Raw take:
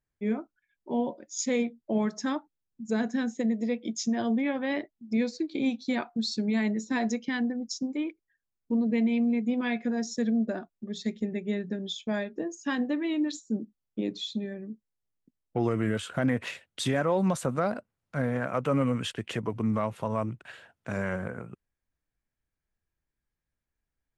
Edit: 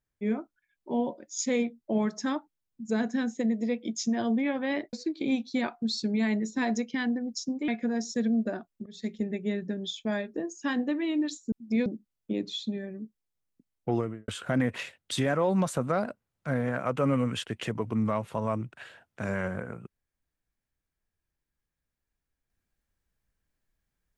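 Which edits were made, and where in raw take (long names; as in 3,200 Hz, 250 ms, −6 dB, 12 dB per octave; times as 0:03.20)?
0:04.93–0:05.27: move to 0:13.54
0:08.02–0:09.70: remove
0:10.88–0:11.16: fade in, from −18.5 dB
0:15.57–0:15.96: fade out and dull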